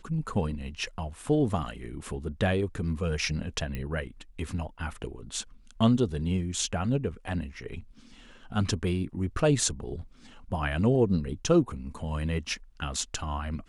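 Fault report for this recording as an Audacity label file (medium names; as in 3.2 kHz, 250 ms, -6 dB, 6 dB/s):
3.750000	3.750000	pop -21 dBFS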